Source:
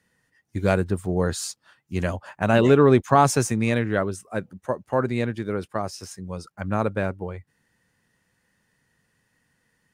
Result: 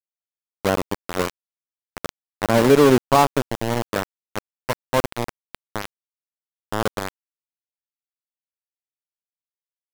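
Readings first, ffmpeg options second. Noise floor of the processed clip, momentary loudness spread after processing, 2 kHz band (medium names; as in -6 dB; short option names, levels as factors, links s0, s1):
under -85 dBFS, 21 LU, +0.5 dB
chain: -af "equalizer=f=125:t=o:w=1:g=5,equalizer=f=250:t=o:w=1:g=10,equalizer=f=500:t=o:w=1:g=11,equalizer=f=1000:t=o:w=1:g=12,equalizer=f=2000:t=o:w=1:g=-4,equalizer=f=4000:t=o:w=1:g=-8,equalizer=f=8000:t=o:w=1:g=-7,aeval=exprs='val(0)*gte(abs(val(0)),0.562)':c=same,volume=0.299"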